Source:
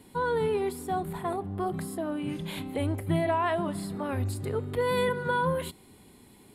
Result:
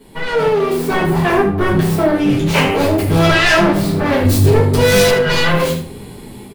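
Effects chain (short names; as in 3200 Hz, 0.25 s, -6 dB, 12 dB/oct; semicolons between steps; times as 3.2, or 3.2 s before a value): self-modulated delay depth 0.65 ms; limiter -22.5 dBFS, peak gain reduction 7 dB; 2.82–3.58 high shelf 4400 Hz +6.5 dB; shoebox room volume 40 m³, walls mixed, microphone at 1.6 m; soft clip -14 dBFS, distortion -17 dB; 0.48–1.01 compressor 2:1, threshold -24 dBFS, peak gain reduction 4 dB; 2.55–2.76 spectral gain 400–3200 Hz +12 dB; 4.25–5.11 tone controls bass +5 dB, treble +8 dB; echo 78 ms -11.5 dB; AGC gain up to 9 dB; gain +1.5 dB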